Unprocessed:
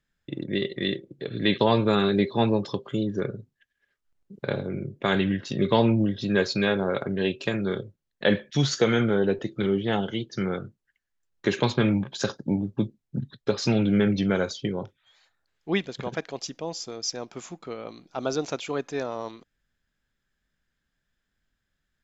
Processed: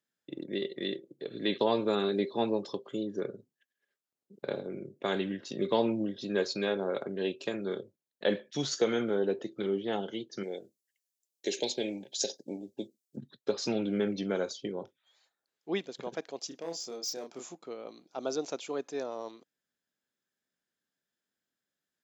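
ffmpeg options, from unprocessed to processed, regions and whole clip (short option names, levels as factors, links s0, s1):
-filter_complex "[0:a]asettb=1/sr,asplit=3[s0][s1][s2];[s0]atrim=end=10.434[s3];[s1]atrim=start=10.43:end=13.17,asetpts=PTS-STARTPTS,afade=t=in:d=0.004:c=qsin,afade=t=out:st=2.736:d=0.004:c=qsin,asuperstop=centerf=1200:order=4:qfactor=0.96,bass=f=250:g=-12,treble=f=4000:g=10[s4];[s2]atrim=start=13.166[s5];[s3][s4]acrossfade=d=0.004:c1=hsin:c2=qsin[s6];[s6][s5]acrossfade=d=0.004:c1=qsin:c2=hsin,asettb=1/sr,asplit=3[s7][s8][s9];[s7]atrim=end=16.484[s10];[s8]atrim=start=16.48:end=17.55,asetpts=PTS-STARTPTS,afade=t=in:d=0.004:c=qsin,afade=t=out:st=1.066:d=0.004:c=qsin,asoftclip=type=hard:threshold=0.0447,asplit=2[s11][s12];[s12]adelay=30,volume=0.631[s13];[s11][s13]amix=inputs=2:normalize=0,atrim=end_sample=47187[s14];[s9]atrim=start=17.546[s15];[s10][s14]acrossfade=d=0.004:c1=hsin:c2=qsin[s16];[s16][s15]acrossfade=d=0.004:c1=qsin:c2=hsin,highpass=320,equalizer=f=1800:w=0.52:g=-8.5,volume=0.794"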